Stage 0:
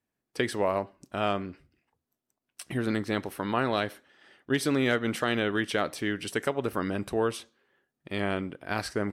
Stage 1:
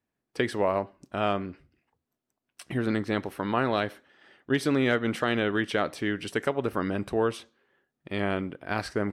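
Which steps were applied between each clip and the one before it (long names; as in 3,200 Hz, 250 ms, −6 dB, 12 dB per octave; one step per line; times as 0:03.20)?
high-shelf EQ 5,400 Hz −9 dB
level +1.5 dB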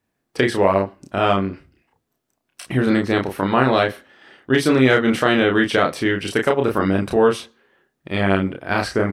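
double-tracking delay 31 ms −3 dB
level +8 dB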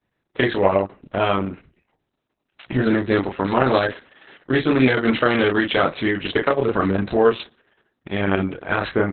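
Opus 6 kbit/s 48,000 Hz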